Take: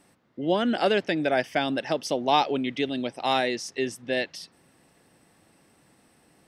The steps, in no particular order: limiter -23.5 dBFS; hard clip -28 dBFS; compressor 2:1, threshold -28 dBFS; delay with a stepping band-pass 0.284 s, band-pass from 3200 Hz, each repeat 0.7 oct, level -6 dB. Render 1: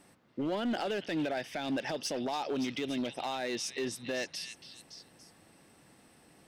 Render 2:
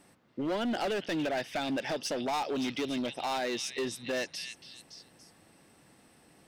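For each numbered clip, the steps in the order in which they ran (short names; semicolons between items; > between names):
compressor > limiter > delay with a stepping band-pass > hard clip; compressor > delay with a stepping band-pass > hard clip > limiter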